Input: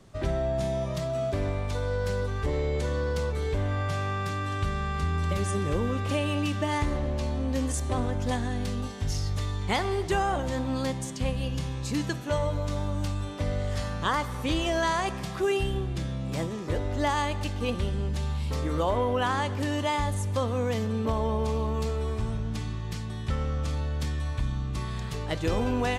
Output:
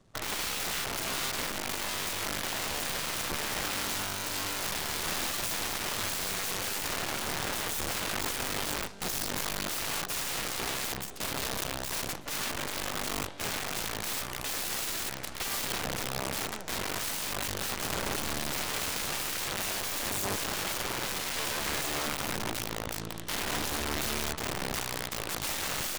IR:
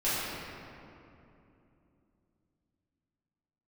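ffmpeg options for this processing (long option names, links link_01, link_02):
-af "aeval=exprs='(mod(21.1*val(0)+1,2)-1)/21.1':channel_layout=same,aeval=exprs='0.0501*(cos(1*acos(clip(val(0)/0.0501,-1,1)))-cos(1*PI/2))+0.0224*(cos(3*acos(clip(val(0)/0.0501,-1,1)))-cos(3*PI/2))+0.00251*(cos(4*acos(clip(val(0)/0.0501,-1,1)))-cos(4*PI/2))+0.00708*(cos(6*acos(clip(val(0)/0.0501,-1,1)))-cos(6*PI/2))':channel_layout=same"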